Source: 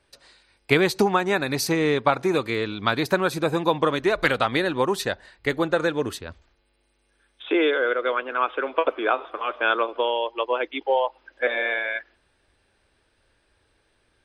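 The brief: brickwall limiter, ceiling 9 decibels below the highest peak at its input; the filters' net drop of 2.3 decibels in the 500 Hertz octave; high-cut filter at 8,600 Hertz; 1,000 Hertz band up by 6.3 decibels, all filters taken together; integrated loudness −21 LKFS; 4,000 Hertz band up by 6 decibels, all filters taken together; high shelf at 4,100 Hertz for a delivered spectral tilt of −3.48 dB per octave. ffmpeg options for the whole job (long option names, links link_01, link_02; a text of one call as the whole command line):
ffmpeg -i in.wav -af "lowpass=8600,equalizer=frequency=500:width_type=o:gain=-5,equalizer=frequency=1000:width_type=o:gain=8.5,equalizer=frequency=4000:width_type=o:gain=4.5,highshelf=frequency=4100:gain=4.5,volume=1.5dB,alimiter=limit=-7.5dB:level=0:latency=1" out.wav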